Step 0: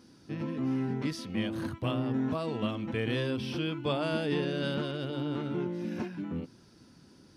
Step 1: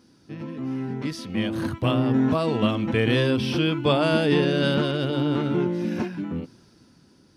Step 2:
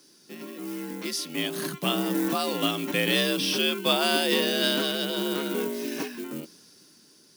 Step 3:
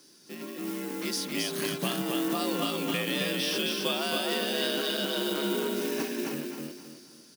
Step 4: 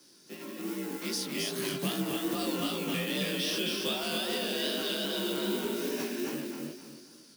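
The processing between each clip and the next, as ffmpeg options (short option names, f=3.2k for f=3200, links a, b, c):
-af "dynaudnorm=f=220:g=13:m=10dB"
-af "acrusher=bits=8:mode=log:mix=0:aa=0.000001,crystalizer=i=7:c=0,afreqshift=62,volume=-6.5dB"
-af "acompressor=threshold=-28dB:ratio=5,acrusher=bits=4:mode=log:mix=0:aa=0.000001,aecho=1:1:267|534|801|1068:0.708|0.241|0.0818|0.0278"
-filter_complex "[0:a]flanger=delay=15.5:depth=7.6:speed=2.5,acrossover=split=180|450|2500[a][b][c][d];[c]asoftclip=type=tanh:threshold=-38dB[e];[a][b][e][d]amix=inputs=4:normalize=0,volume=1.5dB"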